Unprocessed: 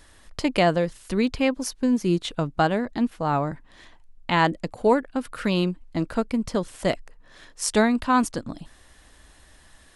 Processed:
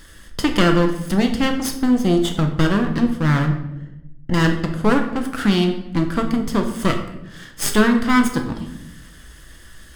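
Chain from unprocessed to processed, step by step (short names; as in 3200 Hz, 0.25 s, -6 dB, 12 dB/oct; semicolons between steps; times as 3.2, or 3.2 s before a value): minimum comb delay 0.62 ms; in parallel at +2.5 dB: compressor, threshold -31 dBFS, peak gain reduction 16 dB; 3.46–4.34 on the sum: running mean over 37 samples; reverb RT60 0.90 s, pre-delay 6 ms, DRR 4 dB; gain +1 dB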